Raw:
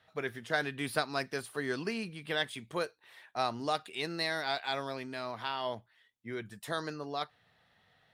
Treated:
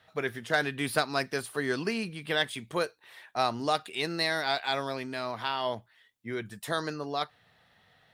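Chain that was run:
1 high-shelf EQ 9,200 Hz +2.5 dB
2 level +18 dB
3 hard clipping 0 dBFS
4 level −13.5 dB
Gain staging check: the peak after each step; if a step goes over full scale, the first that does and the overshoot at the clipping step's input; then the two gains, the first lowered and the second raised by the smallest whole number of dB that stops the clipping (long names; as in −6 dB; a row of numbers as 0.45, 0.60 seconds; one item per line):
−14.5, +3.5, 0.0, −13.5 dBFS
step 2, 3.5 dB
step 2 +14 dB, step 4 −9.5 dB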